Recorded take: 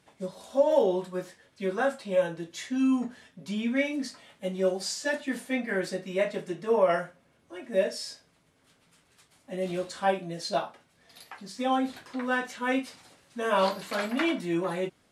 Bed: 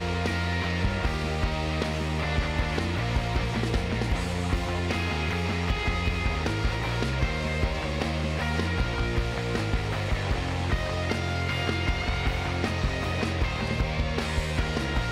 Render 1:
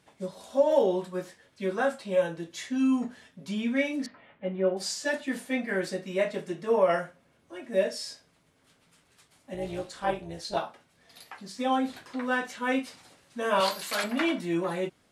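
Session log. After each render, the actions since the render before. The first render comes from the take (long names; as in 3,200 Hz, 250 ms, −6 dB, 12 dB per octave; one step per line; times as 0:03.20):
0:04.06–0:04.77: low-pass filter 2,500 Hz 24 dB per octave
0:09.54–0:10.57: amplitude modulation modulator 240 Hz, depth 55%
0:13.60–0:14.04: spectral tilt +3 dB per octave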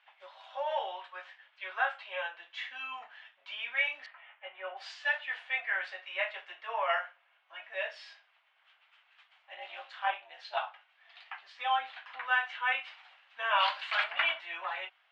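elliptic band-pass filter 730–3,000 Hz, stop band 80 dB
spectral tilt +3.5 dB per octave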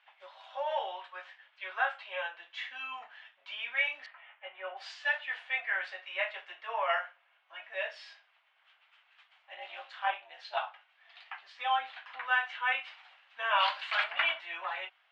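no processing that can be heard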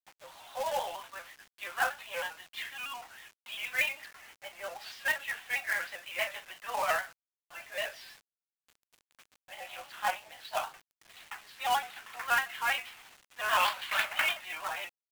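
log-companded quantiser 4 bits
pitch modulation by a square or saw wave square 6.3 Hz, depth 100 cents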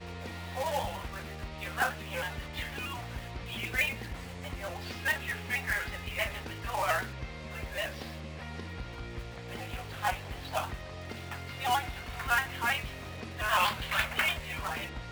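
mix in bed −14 dB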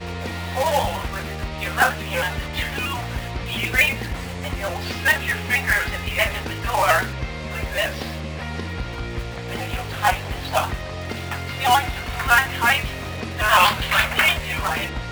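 level +12 dB
brickwall limiter −2 dBFS, peak gain reduction 2 dB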